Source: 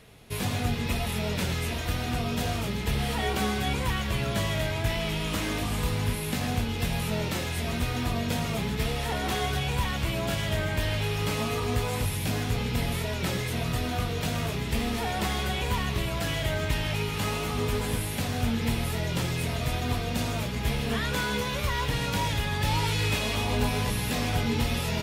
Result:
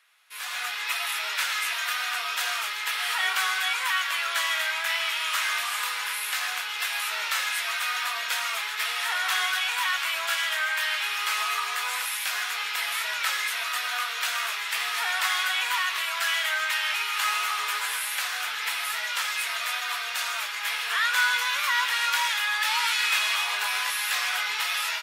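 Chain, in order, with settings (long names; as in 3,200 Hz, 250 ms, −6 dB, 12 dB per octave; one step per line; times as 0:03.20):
automatic gain control gain up to 16.5 dB
four-pole ladder high-pass 1,100 Hz, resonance 40%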